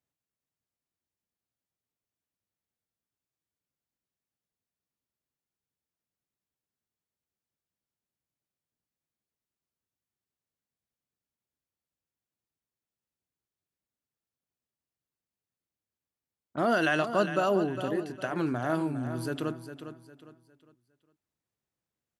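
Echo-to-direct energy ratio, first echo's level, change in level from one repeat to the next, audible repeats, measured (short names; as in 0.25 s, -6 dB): -10.0 dB, -10.5 dB, -9.5 dB, 3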